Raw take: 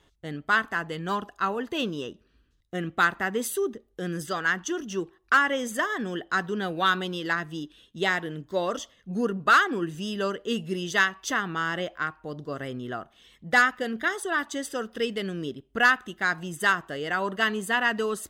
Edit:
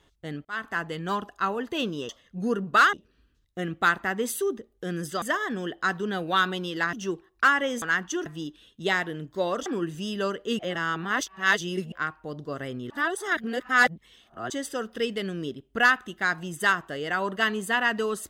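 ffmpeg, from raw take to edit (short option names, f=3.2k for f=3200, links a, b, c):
-filter_complex "[0:a]asplit=13[a][b][c][d][e][f][g][h][i][j][k][l][m];[a]atrim=end=0.45,asetpts=PTS-STARTPTS,afade=t=out:st=0.446:d=0.004:c=hsin[n];[b]atrim=start=0.45:end=2.092,asetpts=PTS-STARTPTS,afade=t=in:d=0.33[o];[c]atrim=start=8.818:end=9.662[p];[d]atrim=start=2.088:end=4.382[q];[e]atrim=start=5.708:end=7.422[r];[f]atrim=start=4.818:end=5.712[s];[g]atrim=start=4.378:end=4.822[t];[h]atrim=start=7.418:end=8.822[u];[i]atrim=start=9.658:end=10.592[v];[j]atrim=start=10.588:end=11.922,asetpts=PTS-STARTPTS,areverse[w];[k]atrim=start=11.918:end=12.902[x];[l]atrim=start=12.898:end=14.502,asetpts=PTS-STARTPTS,areverse[y];[m]atrim=start=14.498[z];[n][o]concat=n=2:v=0:a=1[aa];[aa][p]acrossfade=d=0.004:c1=hsin:c2=hsin[ab];[ab][q]acrossfade=d=0.004:c1=hsin:c2=hsin[ac];[ac][r]acrossfade=d=0.004:c1=hsin:c2=hsin[ad];[ad][s]acrossfade=d=0.004:c1=hsin:c2=hsin[ae];[ae][t]acrossfade=d=0.004:c1=hsin:c2=hsin[af];[af][u]acrossfade=d=0.004:c1=hsin:c2=hsin[ag];[ag][v]acrossfade=d=0.004:c1=hsin:c2=hsin[ah];[ah][w]acrossfade=d=0.004:c1=hsin:c2=hsin[ai];[ai][x]acrossfade=d=0.004:c1=hsin:c2=hsin[aj];[aj][y]acrossfade=d=0.004:c1=hsin:c2=hsin[ak];[ak][z]acrossfade=d=0.004:c1=hsin:c2=hsin"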